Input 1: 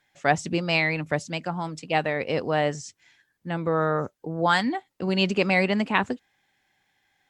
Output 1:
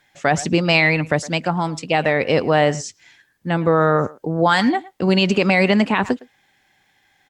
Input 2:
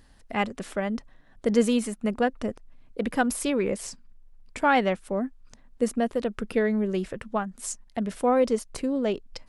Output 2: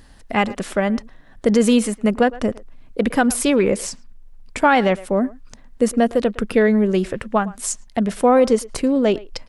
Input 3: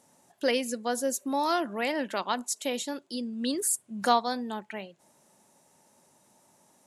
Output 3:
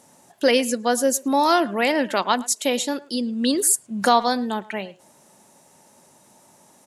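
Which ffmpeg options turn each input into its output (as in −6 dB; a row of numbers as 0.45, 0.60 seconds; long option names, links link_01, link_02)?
-filter_complex "[0:a]asplit=2[link_01][link_02];[link_02]adelay=110,highpass=300,lowpass=3400,asoftclip=type=hard:threshold=-14dB,volume=-20dB[link_03];[link_01][link_03]amix=inputs=2:normalize=0,alimiter=level_in=13.5dB:limit=-1dB:release=50:level=0:latency=1,volume=-4.5dB"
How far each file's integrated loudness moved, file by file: +7.0, +8.0, +8.5 LU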